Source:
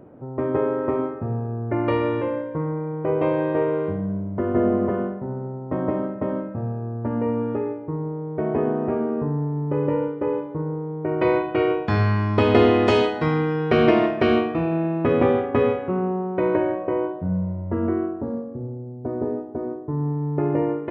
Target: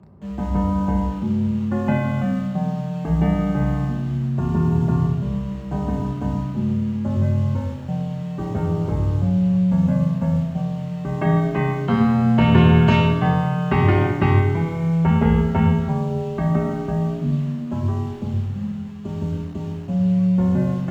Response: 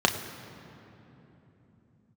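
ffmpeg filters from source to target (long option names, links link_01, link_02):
-filter_complex "[0:a]asplit=2[link_01][link_02];[link_02]acrusher=bits=5:mix=0:aa=0.000001,volume=-9dB[link_03];[link_01][link_03]amix=inputs=2:normalize=0,afreqshift=-330[link_04];[1:a]atrim=start_sample=2205,afade=type=out:start_time=0.43:duration=0.01,atrim=end_sample=19404[link_05];[link_04][link_05]afir=irnorm=-1:irlink=0,volume=-14.5dB"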